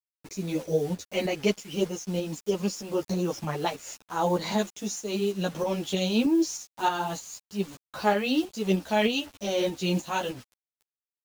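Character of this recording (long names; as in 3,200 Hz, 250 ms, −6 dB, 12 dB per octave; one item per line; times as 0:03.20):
a quantiser's noise floor 8 bits, dither none
tremolo saw up 3.2 Hz, depth 45%
a shimmering, thickened sound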